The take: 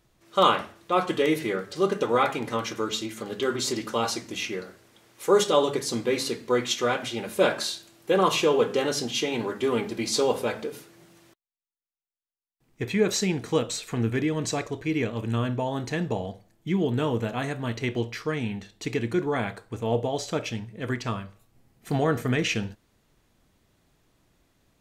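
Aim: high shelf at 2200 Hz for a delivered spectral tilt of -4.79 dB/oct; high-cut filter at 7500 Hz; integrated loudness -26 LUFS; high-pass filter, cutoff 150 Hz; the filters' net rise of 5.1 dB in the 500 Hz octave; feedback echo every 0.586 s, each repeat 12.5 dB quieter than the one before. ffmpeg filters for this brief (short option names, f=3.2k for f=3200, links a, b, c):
-af "highpass=150,lowpass=7.5k,equalizer=f=500:t=o:g=6.5,highshelf=f=2.2k:g=-7,aecho=1:1:586|1172|1758:0.237|0.0569|0.0137,volume=-2dB"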